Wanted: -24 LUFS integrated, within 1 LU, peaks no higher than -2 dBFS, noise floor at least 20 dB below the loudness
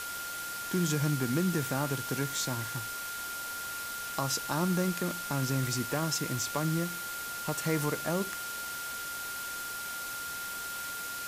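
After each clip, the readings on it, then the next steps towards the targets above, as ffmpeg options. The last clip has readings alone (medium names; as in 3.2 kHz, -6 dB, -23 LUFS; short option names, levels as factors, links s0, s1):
steady tone 1.4 kHz; tone level -38 dBFS; noise floor -38 dBFS; noise floor target -53 dBFS; loudness -32.5 LUFS; peak level -16.5 dBFS; loudness target -24.0 LUFS
-> -af "bandreject=f=1400:w=30"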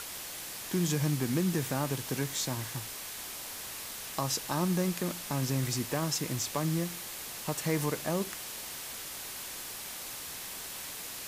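steady tone not found; noise floor -42 dBFS; noise floor target -54 dBFS
-> -af "afftdn=nr=12:nf=-42"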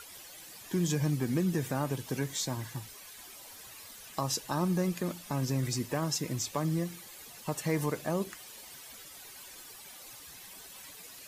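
noise floor -50 dBFS; noise floor target -53 dBFS
-> -af "afftdn=nr=6:nf=-50"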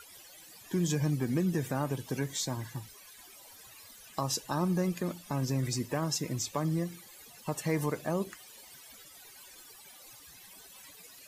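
noise floor -53 dBFS; loudness -33.0 LUFS; peak level -17.5 dBFS; loudness target -24.0 LUFS
-> -af "volume=2.82"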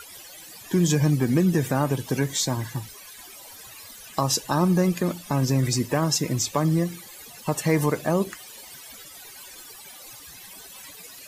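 loudness -24.0 LUFS; peak level -8.5 dBFS; noise floor -44 dBFS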